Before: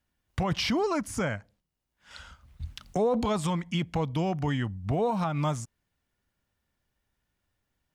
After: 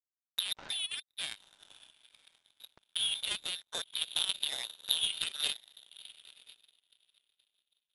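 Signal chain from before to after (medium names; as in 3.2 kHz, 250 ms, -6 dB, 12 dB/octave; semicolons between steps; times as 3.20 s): on a send: echo that smears into a reverb 1011 ms, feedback 50%, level -7 dB; on the sum: frequency inversion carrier 3.8 kHz; power-law waveshaper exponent 3; trim +5.5 dB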